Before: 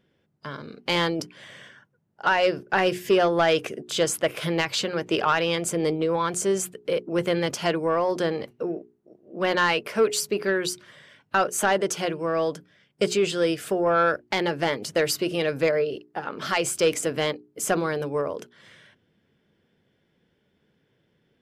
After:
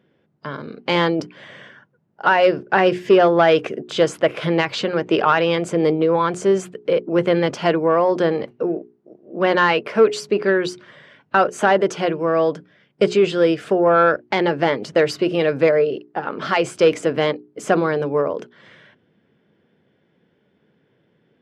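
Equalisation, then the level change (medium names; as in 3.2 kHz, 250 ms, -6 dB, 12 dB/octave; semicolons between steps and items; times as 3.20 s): high-pass 110 Hz; tape spacing loss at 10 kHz 22 dB; bass shelf 150 Hz -3.5 dB; +8.5 dB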